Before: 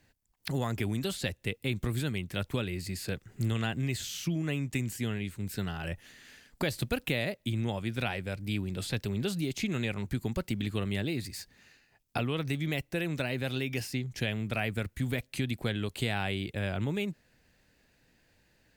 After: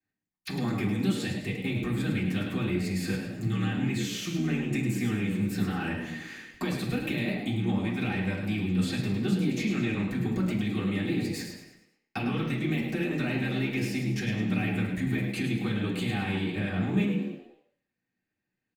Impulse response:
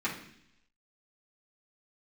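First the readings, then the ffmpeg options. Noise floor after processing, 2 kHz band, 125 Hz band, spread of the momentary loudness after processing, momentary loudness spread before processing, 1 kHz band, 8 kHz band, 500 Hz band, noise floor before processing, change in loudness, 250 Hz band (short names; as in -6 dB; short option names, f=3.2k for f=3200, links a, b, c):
-85 dBFS, +2.0 dB, +2.5 dB, 5 LU, 5 LU, +1.5 dB, -0.5 dB, +1.0 dB, -69 dBFS, +4.0 dB, +7.0 dB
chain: -filter_complex "[0:a]agate=range=-29dB:threshold=-56dB:ratio=16:detection=peak,acrossover=split=430|2900[a][b][c];[b]alimiter=level_in=5dB:limit=-24dB:level=0:latency=1,volume=-5dB[d];[a][d][c]amix=inputs=3:normalize=0,acompressor=threshold=-38dB:ratio=3,asplit=2[e][f];[f]asoftclip=type=tanh:threshold=-39dB,volume=-8dB[g];[e][g]amix=inputs=2:normalize=0,asplit=6[h][i][j][k][l][m];[i]adelay=105,afreqshift=77,volume=-7.5dB[n];[j]adelay=210,afreqshift=154,volume=-15.2dB[o];[k]adelay=315,afreqshift=231,volume=-23dB[p];[l]adelay=420,afreqshift=308,volume=-30.7dB[q];[m]adelay=525,afreqshift=385,volume=-38.5dB[r];[h][n][o][p][q][r]amix=inputs=6:normalize=0[s];[1:a]atrim=start_sample=2205,afade=t=out:st=0.35:d=0.01,atrim=end_sample=15876[t];[s][t]afir=irnorm=-1:irlink=0"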